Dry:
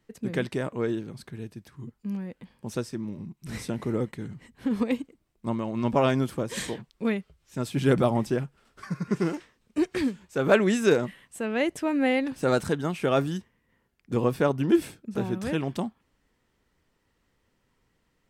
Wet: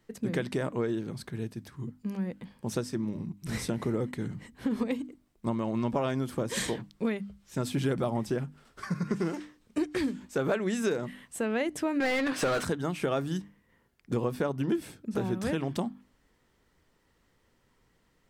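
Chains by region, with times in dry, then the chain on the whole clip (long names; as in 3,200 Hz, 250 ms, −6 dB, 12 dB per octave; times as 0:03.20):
0:12.00–0:12.65: low-shelf EQ 430 Hz −9 dB + notch filter 870 Hz, Q 6.4 + mid-hump overdrive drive 28 dB, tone 2,100 Hz, clips at −15 dBFS
whole clip: parametric band 2,600 Hz −2.5 dB 0.36 octaves; mains-hum notches 50/100/150/200/250/300 Hz; downward compressor 6 to 1, threshold −29 dBFS; level +3 dB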